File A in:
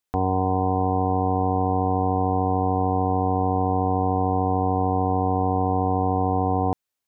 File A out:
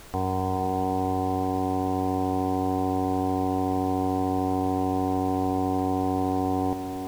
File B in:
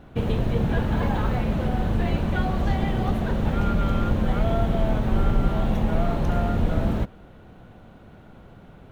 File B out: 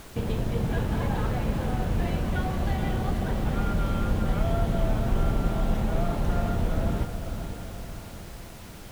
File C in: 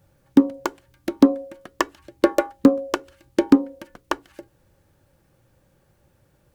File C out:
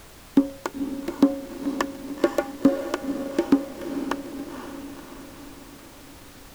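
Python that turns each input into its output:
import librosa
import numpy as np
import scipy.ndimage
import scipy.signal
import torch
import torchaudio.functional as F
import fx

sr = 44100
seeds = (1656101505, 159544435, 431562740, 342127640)

y = fx.echo_diffused(x, sr, ms=503, feedback_pct=55, wet_db=-8.0)
y = fx.dmg_noise_colour(y, sr, seeds[0], colour='pink', level_db=-42.0)
y = F.gain(torch.from_numpy(y), -4.5).numpy()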